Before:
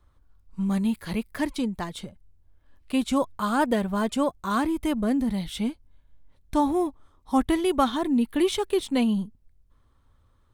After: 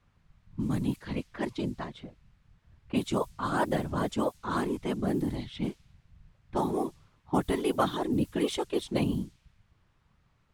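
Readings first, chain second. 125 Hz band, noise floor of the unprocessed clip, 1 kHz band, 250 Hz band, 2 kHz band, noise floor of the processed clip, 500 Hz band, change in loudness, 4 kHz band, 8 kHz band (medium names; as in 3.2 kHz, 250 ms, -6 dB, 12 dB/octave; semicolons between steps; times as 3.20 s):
+1.5 dB, -62 dBFS, -5.0 dB, -6.5 dB, -4.5 dB, -69 dBFS, -4.0 dB, -5.5 dB, -5.5 dB, -6.0 dB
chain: whisper effect; added noise blue -52 dBFS; level-controlled noise filter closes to 1.5 kHz, open at -19.5 dBFS; trim -5 dB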